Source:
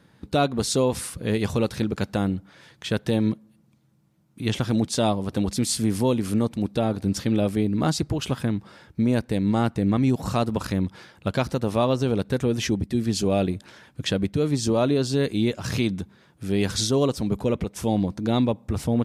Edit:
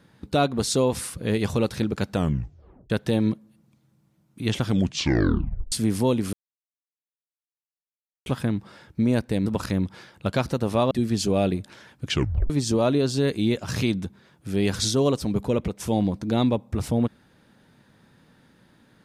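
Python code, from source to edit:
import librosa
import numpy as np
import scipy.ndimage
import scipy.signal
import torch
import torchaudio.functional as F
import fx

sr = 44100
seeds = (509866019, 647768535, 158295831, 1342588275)

y = fx.edit(x, sr, fx.tape_stop(start_s=2.13, length_s=0.77),
    fx.tape_stop(start_s=4.64, length_s=1.08),
    fx.silence(start_s=6.33, length_s=1.93),
    fx.cut(start_s=9.46, length_s=1.01),
    fx.cut(start_s=11.92, length_s=0.95),
    fx.tape_stop(start_s=14.04, length_s=0.42), tone=tone)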